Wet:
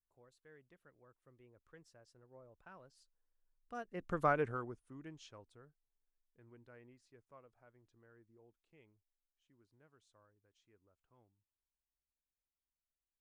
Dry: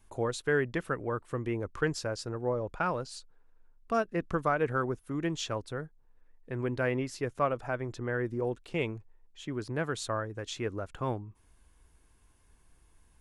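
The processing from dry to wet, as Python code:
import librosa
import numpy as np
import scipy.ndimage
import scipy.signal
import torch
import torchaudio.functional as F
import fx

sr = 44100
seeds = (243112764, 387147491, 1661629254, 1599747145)

y = fx.doppler_pass(x, sr, speed_mps=17, closest_m=1.9, pass_at_s=4.29)
y = F.gain(torch.from_numpy(y), -3.0).numpy()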